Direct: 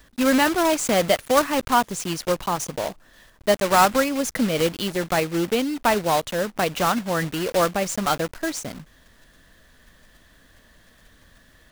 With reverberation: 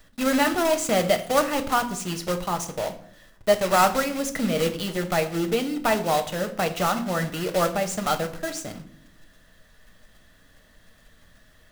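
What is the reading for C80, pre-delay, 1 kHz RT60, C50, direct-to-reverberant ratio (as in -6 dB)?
16.5 dB, 5 ms, 0.55 s, 13.5 dB, 6.5 dB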